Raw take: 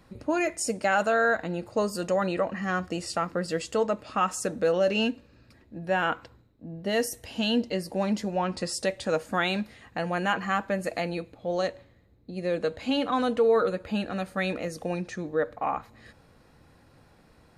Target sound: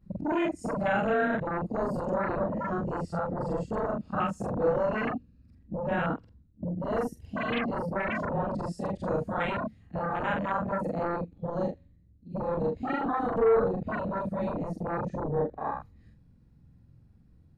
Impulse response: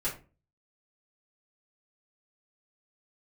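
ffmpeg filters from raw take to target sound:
-filter_complex "[0:a]afftfilt=real='re':imag='-im':win_size=4096:overlap=0.75,afwtdn=0.0251,acrossover=split=220|750|1900[s0][s1][s2][s3];[s0]aeval=exprs='0.0355*sin(PI/2*10*val(0)/0.0355)':c=same[s4];[s4][s1][s2][s3]amix=inputs=4:normalize=0"

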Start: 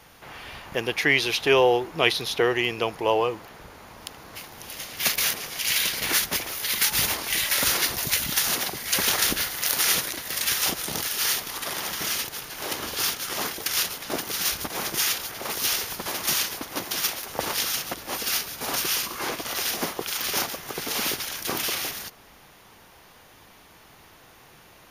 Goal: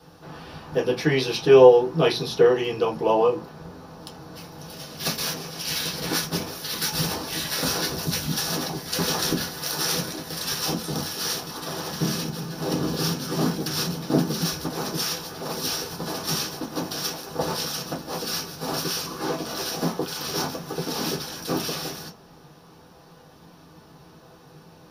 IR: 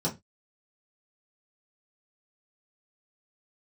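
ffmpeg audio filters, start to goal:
-filter_complex "[0:a]asettb=1/sr,asplit=3[s0][s1][s2];[s0]atrim=end=12.004[s3];[s1]atrim=start=12:end=14.47,asetpts=PTS-STARTPTS,afade=t=in:d=0.004:c=qsin,afade=t=out:st=2.466:d=0.004:c=qsin,equalizer=f=180:w=0.77:g=10[s4];[s2]atrim=start=14.466[s5];[s3][s4]acrossfade=d=0.004:c1=hsin:c2=qsin[s6];[s6][s5]acrossfade=d=0.004:c1=qsin:c2=hsin[s7];[1:a]atrim=start_sample=2205[s8];[s7][s8]afir=irnorm=-1:irlink=0,volume=0.398"

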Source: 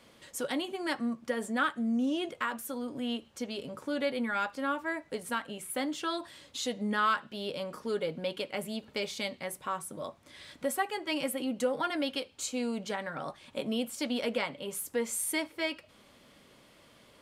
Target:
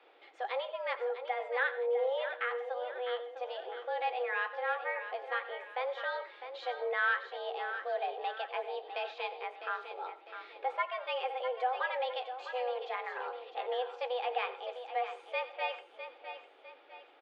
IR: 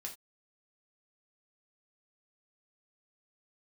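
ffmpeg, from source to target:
-filter_complex "[0:a]lowpass=f=2900:w=0.5412,lowpass=f=2900:w=1.3066,afreqshift=250,aecho=1:1:654|1308|1962|2616:0.316|0.13|0.0532|0.0218,asplit=2[s0][s1];[1:a]atrim=start_sample=2205,adelay=88[s2];[s1][s2]afir=irnorm=-1:irlink=0,volume=0.266[s3];[s0][s3]amix=inputs=2:normalize=0,volume=0.75"

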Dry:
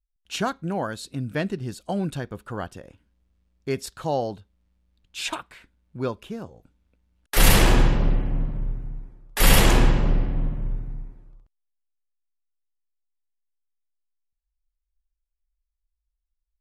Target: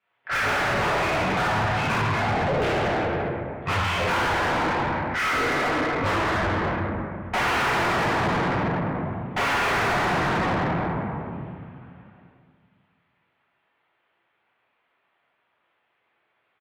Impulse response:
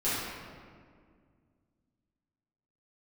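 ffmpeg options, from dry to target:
-filter_complex "[0:a]asetrate=29433,aresample=44100,atempo=1.49831,acrossover=split=170|1700|1800[s0][s1][s2][s3];[s1]aeval=exprs='(mod(9.44*val(0)+1,2)-1)/9.44':c=same[s4];[s0][s4][s2][s3]amix=inputs=4:normalize=0[s5];[1:a]atrim=start_sample=2205[s6];[s5][s6]afir=irnorm=-1:irlink=0,highpass=f=240:t=q:w=0.5412,highpass=f=240:t=q:w=1.307,lowpass=f=3400:t=q:w=0.5176,lowpass=f=3400:t=q:w=0.7071,lowpass=f=3400:t=q:w=1.932,afreqshift=-360,acompressor=threshold=0.0631:ratio=2.5,highpass=62,asplit=2[s7][s8];[s8]highpass=f=720:p=1,volume=70.8,asoftclip=type=tanh:threshold=0.251[s9];[s7][s9]amix=inputs=2:normalize=0,lowpass=f=1900:p=1,volume=0.501,volume=0.668"

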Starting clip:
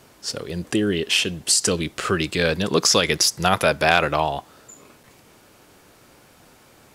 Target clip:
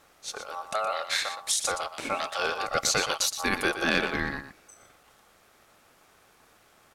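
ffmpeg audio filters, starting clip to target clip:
-af "aeval=exprs='val(0)*sin(2*PI*970*n/s)':c=same,aecho=1:1:119:0.316,volume=0.531"

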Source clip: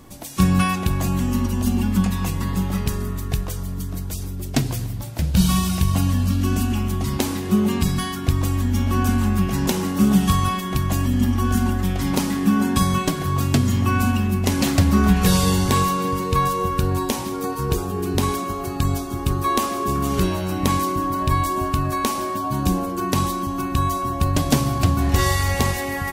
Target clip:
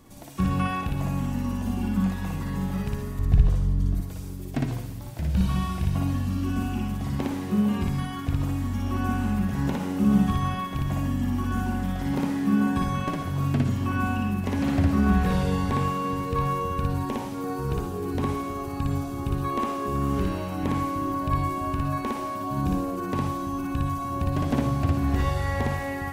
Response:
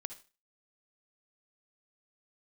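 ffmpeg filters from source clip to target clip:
-filter_complex "[0:a]asettb=1/sr,asplit=3[s0][s1][s2];[s0]atrim=end=3.194[s3];[s1]atrim=start=3.19:end=3.95,asetpts=PTS-STARTPTS,afade=t=in:d=0.004:c=qsin,afade=t=out:st=0.756:d=0.004:c=qsin,aemphasis=mode=reproduction:type=bsi[s4];[s2]atrim=start=3.946[s5];[s3][s4]acrossfade=d=0.004:c1=hsin:c2=qsin[s6];[s6][s5]acrossfade=d=0.004:c1=qsin:c2=hsin,asplit=2[s7][s8];[1:a]atrim=start_sample=2205,adelay=58[s9];[s8][s9]afir=irnorm=-1:irlink=0,volume=1.26[s10];[s7][s10]amix=inputs=2:normalize=0,acrossover=split=2600[s11][s12];[s12]acompressor=threshold=0.01:ratio=4:attack=1:release=60[s13];[s11][s13]amix=inputs=2:normalize=0,volume=0.398"

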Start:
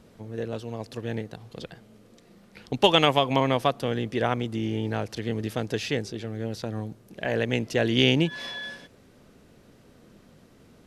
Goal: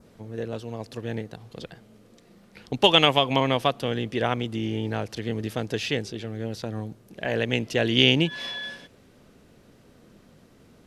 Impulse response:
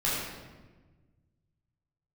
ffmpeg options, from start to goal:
-af "adynamicequalizer=threshold=0.01:dfrequency=3000:dqfactor=1.9:tfrequency=3000:tqfactor=1.9:attack=5:release=100:ratio=0.375:range=2.5:mode=boostabove:tftype=bell"

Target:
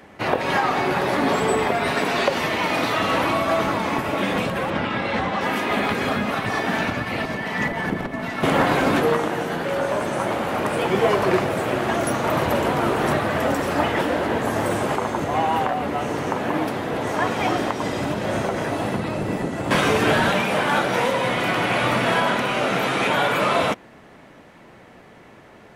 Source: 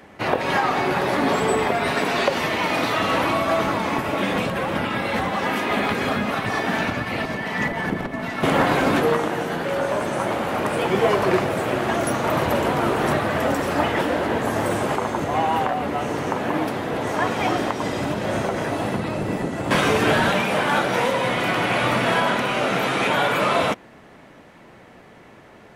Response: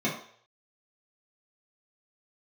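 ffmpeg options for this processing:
-filter_complex "[0:a]asettb=1/sr,asplit=3[s0][s1][s2];[s0]atrim=end=4.704[s3];[s1]atrim=start=4.7:end=5.41,asetpts=PTS-STARTPTS,afade=t=in:d=0.004:c=qsin,afade=t=out:st=0.706:d=0.004:c=qsin,lowpass=5800[s4];[s2]atrim=start=5.406[s5];[s3][s4]acrossfade=d=0.004:c1=hsin:c2=qsin[s6];[s6][s5]acrossfade=d=0.004:c1=qsin:c2=hsin"

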